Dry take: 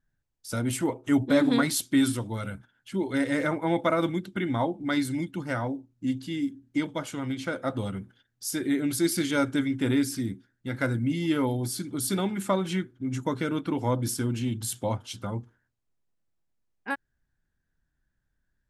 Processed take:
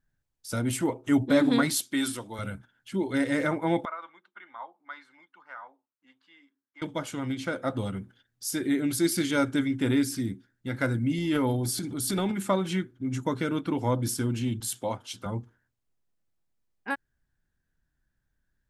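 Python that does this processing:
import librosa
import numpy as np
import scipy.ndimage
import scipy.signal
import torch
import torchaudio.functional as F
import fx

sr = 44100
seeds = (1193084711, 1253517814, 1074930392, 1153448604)

y = fx.highpass(x, sr, hz=510.0, slope=6, at=(1.79, 2.39))
y = fx.ladder_bandpass(y, sr, hz=1300.0, resonance_pct=45, at=(3.85, 6.82))
y = fx.transient(y, sr, attack_db=-5, sustain_db=7, at=(11.18, 12.32))
y = fx.highpass(y, sr, hz=300.0, slope=6, at=(14.6, 15.26))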